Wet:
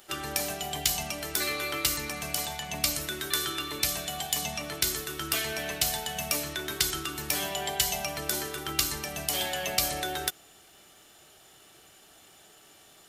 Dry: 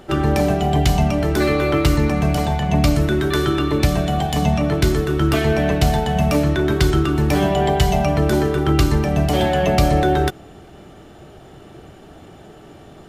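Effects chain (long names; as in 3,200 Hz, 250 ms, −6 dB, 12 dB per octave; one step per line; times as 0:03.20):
first-order pre-emphasis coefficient 0.97
level +4 dB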